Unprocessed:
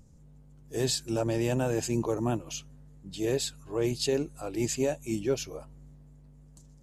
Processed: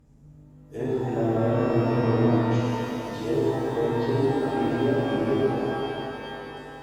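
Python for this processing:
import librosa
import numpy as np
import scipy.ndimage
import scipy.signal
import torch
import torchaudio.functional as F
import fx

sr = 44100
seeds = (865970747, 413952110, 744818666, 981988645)

y = fx.low_shelf(x, sr, hz=68.0, db=-8.0)
y = fx.notch_comb(y, sr, f0_hz=180.0)
y = fx.env_lowpass_down(y, sr, base_hz=500.0, full_db=-24.5)
y = fx.peak_eq(y, sr, hz=7200.0, db=-11.0, octaves=2.0)
y = fx.rev_shimmer(y, sr, seeds[0], rt60_s=3.3, semitones=12, shimmer_db=-8, drr_db=-8.0)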